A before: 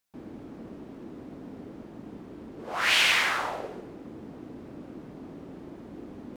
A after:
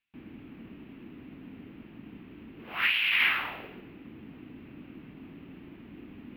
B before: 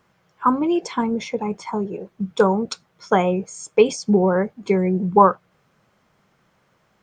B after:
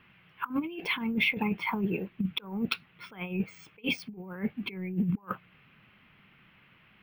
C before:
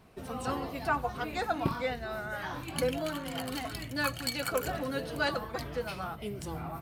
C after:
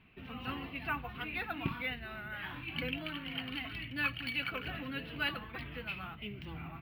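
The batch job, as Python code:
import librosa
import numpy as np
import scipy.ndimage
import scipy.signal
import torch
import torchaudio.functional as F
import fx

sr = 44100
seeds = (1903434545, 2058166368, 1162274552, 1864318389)

y = np.repeat(scipy.signal.resample_poly(x, 1, 3), 3)[:len(x)]
y = fx.over_compress(y, sr, threshold_db=-25.0, ratio=-0.5)
y = fx.curve_eq(y, sr, hz=(270.0, 550.0, 1600.0, 2700.0, 7400.0, 12000.0), db=(0, -11, 1, 12, -30, -11))
y = y * librosa.db_to_amplitude(-4.5)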